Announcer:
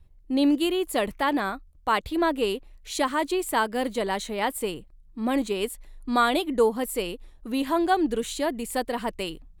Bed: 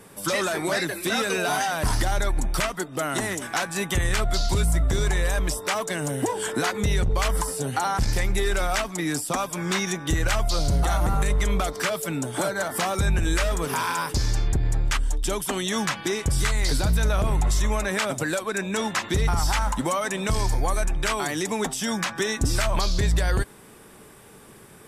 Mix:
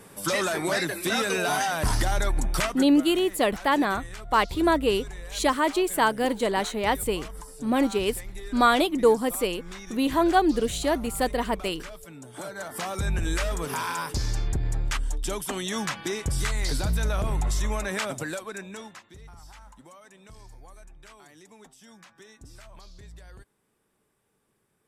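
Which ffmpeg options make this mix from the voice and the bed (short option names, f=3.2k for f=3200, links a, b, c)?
-filter_complex "[0:a]adelay=2450,volume=2dB[a];[1:a]volume=11.5dB,afade=t=out:st=2.65:d=0.4:silence=0.16788,afade=t=in:st=12.2:d=1.01:silence=0.237137,afade=t=out:st=18.01:d=1.03:silence=0.0891251[b];[a][b]amix=inputs=2:normalize=0"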